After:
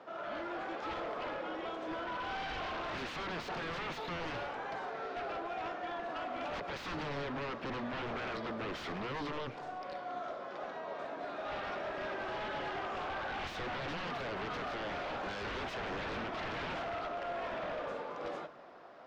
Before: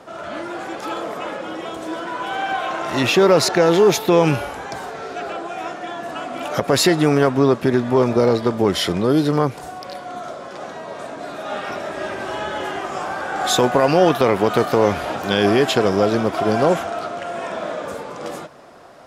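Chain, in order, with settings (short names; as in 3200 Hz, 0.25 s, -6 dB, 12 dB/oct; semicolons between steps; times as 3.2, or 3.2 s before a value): HPF 410 Hz 6 dB/oct; limiter -11.5 dBFS, peak gain reduction 8.5 dB; wavefolder -25 dBFS; air absorption 220 m; on a send: reverb RT60 2.0 s, pre-delay 47 ms, DRR 17 dB; on the sum: gain -7.5 dB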